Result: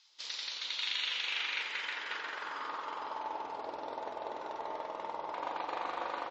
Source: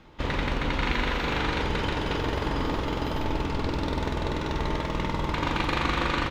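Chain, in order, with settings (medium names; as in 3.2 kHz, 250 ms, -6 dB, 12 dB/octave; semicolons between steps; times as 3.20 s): band-pass sweep 4.8 kHz -> 730 Hz, 0.36–3.63 s; tone controls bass -14 dB, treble +14 dB; trim -1.5 dB; MP3 32 kbps 32 kHz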